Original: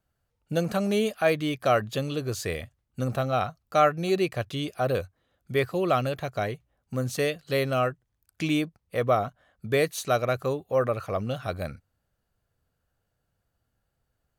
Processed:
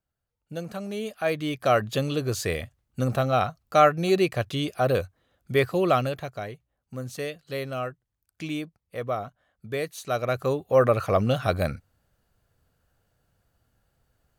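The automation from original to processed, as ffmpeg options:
ffmpeg -i in.wav -af "volume=16dB,afade=type=in:start_time=0.97:duration=1.01:silence=0.281838,afade=type=out:start_time=5.85:duration=0.56:silence=0.354813,afade=type=in:start_time=10.01:duration=1.03:silence=0.223872" out.wav

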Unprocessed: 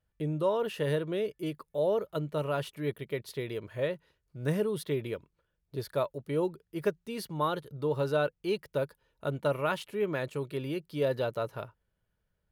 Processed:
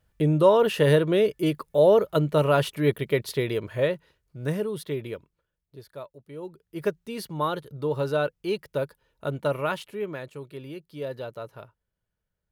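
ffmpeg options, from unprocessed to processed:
ffmpeg -i in.wav -af "volume=23dB,afade=type=out:start_time=3.19:duration=1.39:silence=0.334965,afade=type=out:start_time=5.14:duration=0.66:silence=0.298538,afade=type=in:start_time=6.4:duration=0.48:silence=0.237137,afade=type=out:start_time=9.62:duration=0.64:silence=0.421697" out.wav

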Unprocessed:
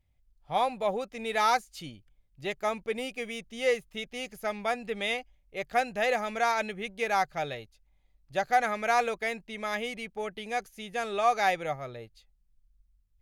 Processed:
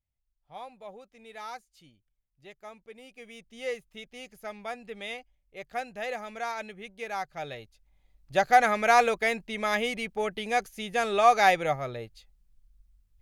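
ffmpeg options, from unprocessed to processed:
ffmpeg -i in.wav -af "volume=5dB,afade=type=in:start_time=3.01:duration=0.56:silence=0.375837,afade=type=in:start_time=7.29:duration=1.07:silence=0.251189" out.wav

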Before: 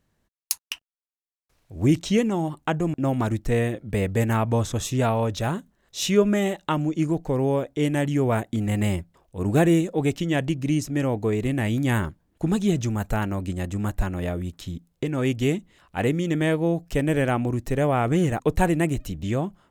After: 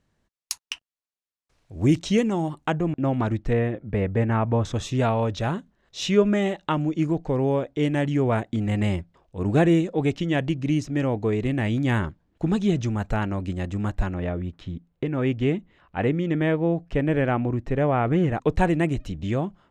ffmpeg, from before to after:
ffmpeg -i in.wav -af "asetnsamples=nb_out_samples=441:pad=0,asendcmd='2.73 lowpass f 3600;3.53 lowpass f 2100;4.65 lowpass f 4900;14.14 lowpass f 2600;18.35 lowpass f 4800',lowpass=7900" out.wav

